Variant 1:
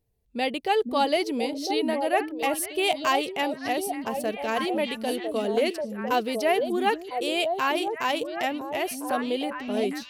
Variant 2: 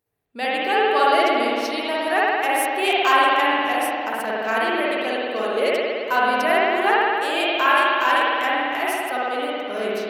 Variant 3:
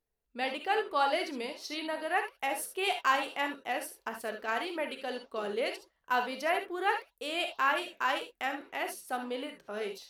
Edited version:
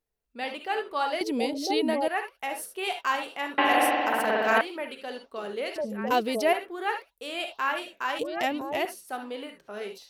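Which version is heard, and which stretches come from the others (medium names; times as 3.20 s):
3
1.21–2.08 s: from 1
3.58–4.61 s: from 2
5.76–6.53 s: from 1
8.19–8.85 s: from 1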